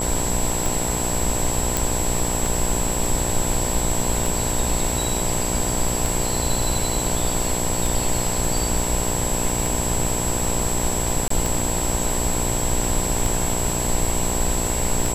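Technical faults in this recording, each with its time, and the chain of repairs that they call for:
buzz 60 Hz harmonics 17 -27 dBFS
tick 33 1/3 rpm
whine 7.7 kHz -26 dBFS
1.77 s: pop
11.28–11.30 s: dropout 24 ms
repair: de-click; de-hum 60 Hz, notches 17; band-stop 7.7 kHz, Q 30; interpolate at 11.28 s, 24 ms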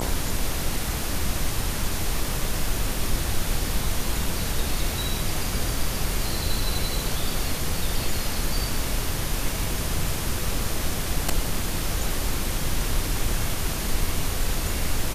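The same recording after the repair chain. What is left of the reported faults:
nothing left

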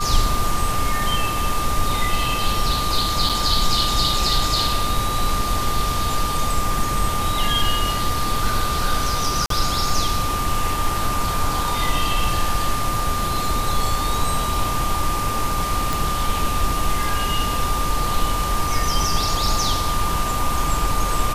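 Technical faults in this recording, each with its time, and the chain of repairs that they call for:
whine 1.2 kHz -24 dBFS
3.29–3.30 s: dropout 6.4 ms
9.46–9.50 s: dropout 43 ms
15.93 s: pop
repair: de-click; band-stop 1.2 kHz, Q 30; interpolate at 3.29 s, 6.4 ms; interpolate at 9.46 s, 43 ms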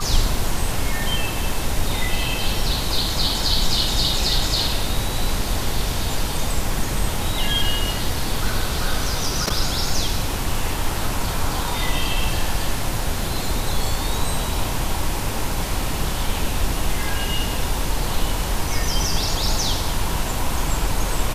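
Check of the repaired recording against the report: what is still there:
nothing left

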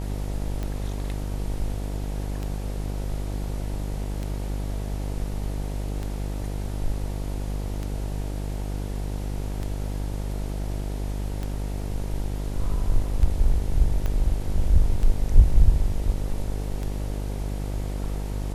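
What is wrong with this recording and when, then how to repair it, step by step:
buzz 50 Hz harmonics 19 -29 dBFS
tick 33 1/3 rpm -18 dBFS
14.06 s: pop -16 dBFS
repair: de-click; de-hum 50 Hz, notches 19

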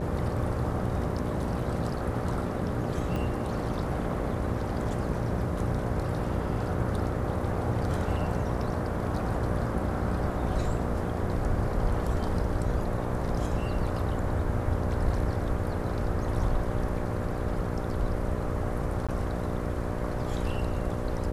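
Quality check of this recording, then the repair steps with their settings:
buzz 60 Hz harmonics 10 -34 dBFS
3.16 s: pop
19.07–19.09 s: dropout 16 ms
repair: de-click; de-hum 60 Hz, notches 10; interpolate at 19.07 s, 16 ms

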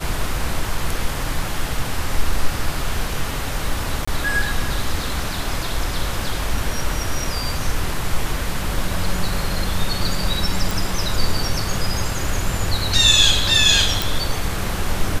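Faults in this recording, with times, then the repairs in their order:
4.05–4.08 s: dropout 25 ms
10.71 s: pop
14.02 s: pop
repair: de-click; interpolate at 4.05 s, 25 ms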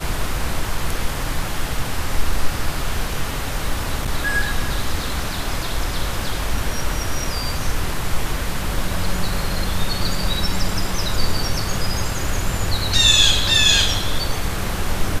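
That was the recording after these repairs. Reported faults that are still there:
nothing left

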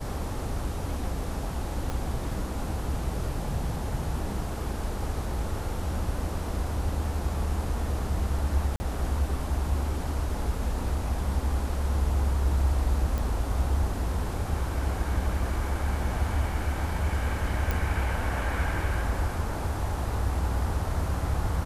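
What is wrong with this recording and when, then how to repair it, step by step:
1.90 s: pop -19 dBFS
8.76–8.80 s: dropout 40 ms
13.18 s: pop
17.71 s: pop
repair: de-click; interpolate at 8.76 s, 40 ms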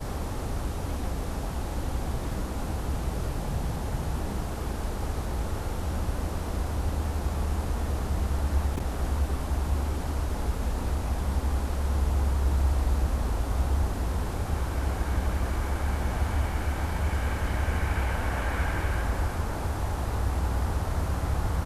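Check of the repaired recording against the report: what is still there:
1.90 s: pop

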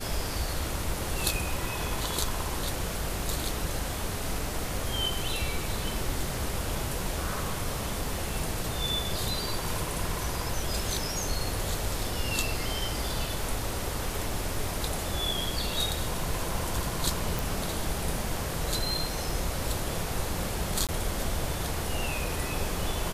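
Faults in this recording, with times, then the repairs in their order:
17.39 s: pop
20.87–20.89 s: dropout 17 ms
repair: de-click; interpolate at 20.87 s, 17 ms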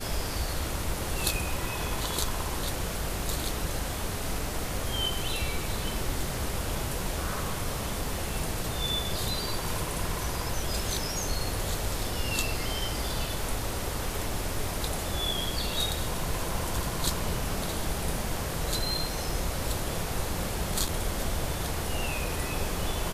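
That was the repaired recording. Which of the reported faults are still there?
nothing left

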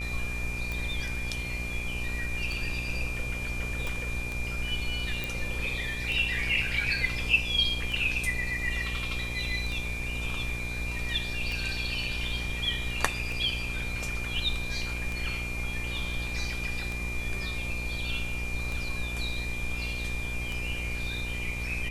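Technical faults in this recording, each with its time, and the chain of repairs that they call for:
buzz 60 Hz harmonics 20 -36 dBFS
tick 33 1/3 rpm
whine 2.4 kHz -35 dBFS
3.87 s: pop
5.24 s: pop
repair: de-click; de-hum 60 Hz, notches 20; band-stop 2.4 kHz, Q 30

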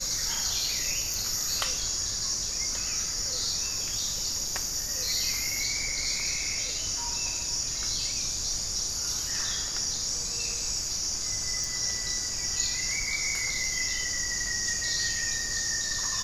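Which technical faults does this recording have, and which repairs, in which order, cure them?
1.14 s: pop
11.64 s: pop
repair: de-click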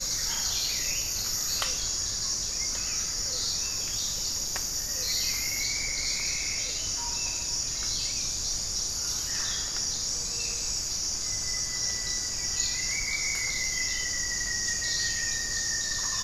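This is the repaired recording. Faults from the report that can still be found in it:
nothing left

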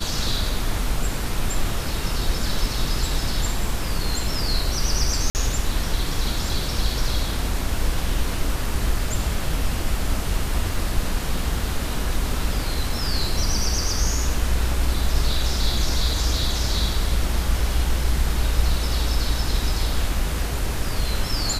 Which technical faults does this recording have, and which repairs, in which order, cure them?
5.30–5.35 s: dropout 49 ms
10.74 s: dropout 2.2 ms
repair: interpolate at 5.30 s, 49 ms; interpolate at 10.74 s, 2.2 ms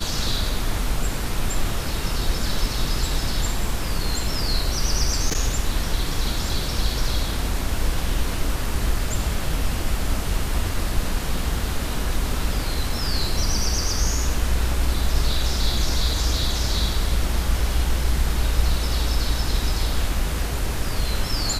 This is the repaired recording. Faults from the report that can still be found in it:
nothing left

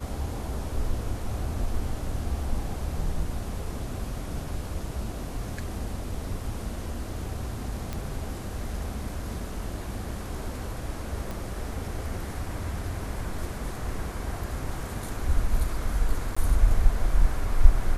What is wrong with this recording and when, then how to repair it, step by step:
7.93 s: pop -18 dBFS
11.31 s: pop
16.35–16.36 s: dropout 15 ms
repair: de-click; interpolate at 16.35 s, 15 ms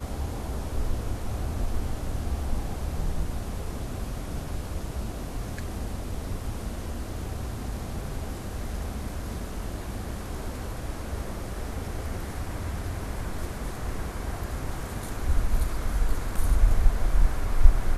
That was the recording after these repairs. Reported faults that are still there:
7.93 s: pop

